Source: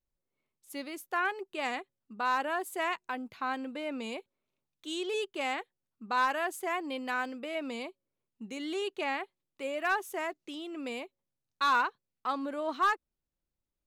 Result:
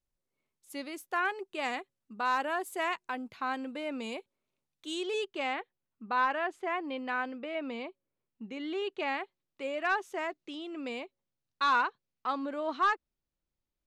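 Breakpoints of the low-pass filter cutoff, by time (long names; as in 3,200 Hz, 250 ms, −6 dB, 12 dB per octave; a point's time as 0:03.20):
0:04.90 12,000 Hz
0:05.37 5,800 Hz
0:05.59 3,100 Hz
0:08.74 3,100 Hz
0:09.14 5,800 Hz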